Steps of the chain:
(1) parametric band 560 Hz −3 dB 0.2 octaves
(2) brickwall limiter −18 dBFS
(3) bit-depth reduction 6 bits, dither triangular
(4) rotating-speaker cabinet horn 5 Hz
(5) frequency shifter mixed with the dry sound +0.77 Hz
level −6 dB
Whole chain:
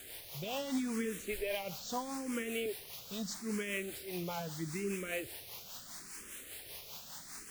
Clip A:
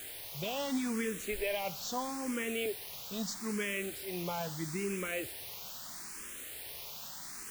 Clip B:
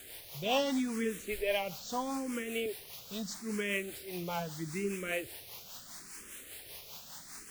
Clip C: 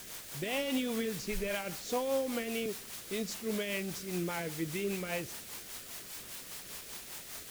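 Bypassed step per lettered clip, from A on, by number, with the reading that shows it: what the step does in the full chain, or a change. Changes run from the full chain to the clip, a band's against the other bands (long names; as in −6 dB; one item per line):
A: 4, change in momentary loudness spread −1 LU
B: 2, change in crest factor +3.5 dB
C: 5, change in integrated loudness +3.0 LU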